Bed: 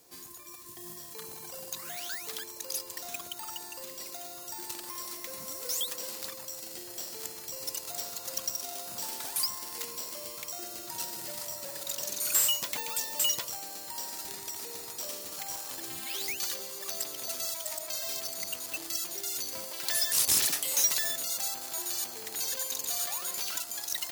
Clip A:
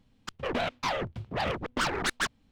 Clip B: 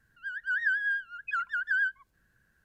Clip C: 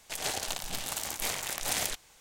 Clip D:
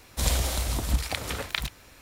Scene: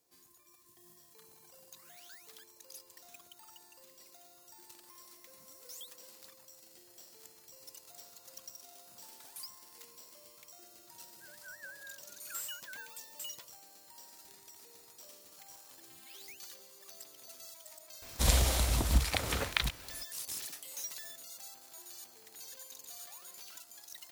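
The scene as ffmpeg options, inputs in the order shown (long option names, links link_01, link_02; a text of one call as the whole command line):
ffmpeg -i bed.wav -i cue0.wav -i cue1.wav -i cue2.wav -i cue3.wav -filter_complex "[0:a]volume=-16dB[link_01];[2:a]lowpass=1400,atrim=end=2.64,asetpts=PTS-STARTPTS,volume=-17.5dB,afade=type=in:duration=0.004:curve=hsin,afade=type=out:start_time=2.636:duration=0.004:curve=hsin,adelay=10970[link_02];[4:a]atrim=end=2.01,asetpts=PTS-STARTPTS,volume=-1.5dB,afade=type=in:duration=0.004:curve=hsin,afade=type=out:start_time=2.006:duration=0.004:curve=hsin,adelay=18020[link_03];[link_01][link_02][link_03]amix=inputs=3:normalize=0" out.wav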